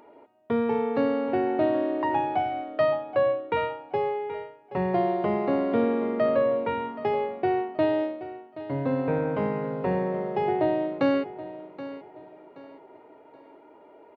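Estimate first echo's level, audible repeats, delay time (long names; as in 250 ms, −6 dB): −14.5 dB, 3, 776 ms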